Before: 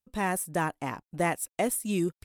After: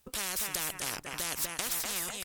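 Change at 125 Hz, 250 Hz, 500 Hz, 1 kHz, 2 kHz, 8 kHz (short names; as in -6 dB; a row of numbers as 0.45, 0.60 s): -14.5, -16.5, -13.5, -10.5, -3.5, +3.0 dB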